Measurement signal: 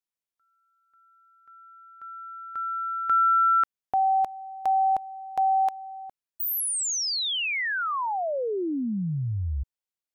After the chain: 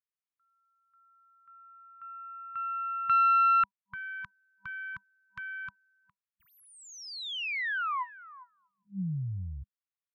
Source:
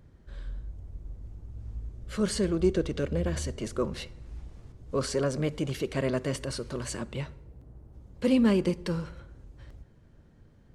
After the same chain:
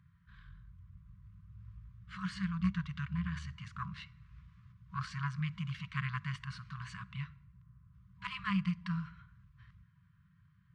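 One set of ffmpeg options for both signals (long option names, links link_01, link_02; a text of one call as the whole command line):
ffmpeg -i in.wav -af "aeval=exprs='0.237*(cos(1*acos(clip(val(0)/0.237,-1,1)))-cos(1*PI/2))+0.0841*(cos(2*acos(clip(val(0)/0.237,-1,1)))-cos(2*PI/2))+0.0266*(cos(3*acos(clip(val(0)/0.237,-1,1)))-cos(3*PI/2))+0.015*(cos(4*acos(clip(val(0)/0.237,-1,1)))-cos(4*PI/2))+0.0075*(cos(6*acos(clip(val(0)/0.237,-1,1)))-cos(6*PI/2))':channel_layout=same,highpass=110,lowpass=2600,afftfilt=real='re*(1-between(b*sr/4096,200,970))':imag='im*(1-between(b*sr/4096,200,970))':win_size=4096:overlap=0.75" out.wav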